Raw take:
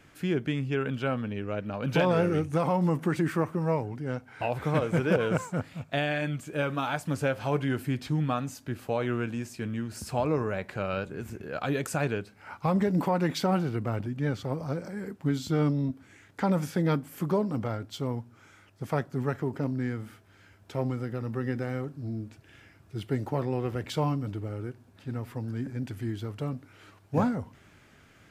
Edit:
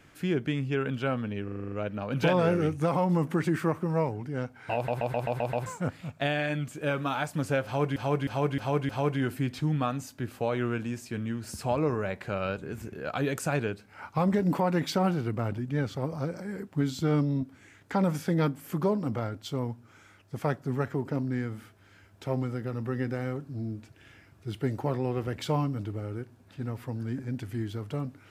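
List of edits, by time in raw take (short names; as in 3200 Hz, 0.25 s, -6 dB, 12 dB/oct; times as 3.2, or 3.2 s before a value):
1.44 stutter 0.04 s, 8 plays
4.47 stutter in place 0.13 s, 7 plays
7.37–7.68 loop, 5 plays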